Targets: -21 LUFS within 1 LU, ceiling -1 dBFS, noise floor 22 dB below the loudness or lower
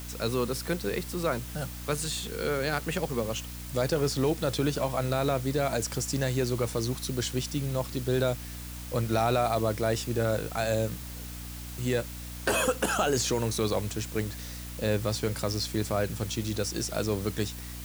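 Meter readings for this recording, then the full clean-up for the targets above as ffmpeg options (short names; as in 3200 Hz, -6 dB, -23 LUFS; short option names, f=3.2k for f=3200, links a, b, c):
hum 60 Hz; harmonics up to 300 Hz; hum level -39 dBFS; noise floor -40 dBFS; noise floor target -52 dBFS; loudness -30.0 LUFS; peak -13.5 dBFS; loudness target -21.0 LUFS
-> -af "bandreject=f=60:t=h:w=6,bandreject=f=120:t=h:w=6,bandreject=f=180:t=h:w=6,bandreject=f=240:t=h:w=6,bandreject=f=300:t=h:w=6"
-af "afftdn=nr=12:nf=-40"
-af "volume=9dB"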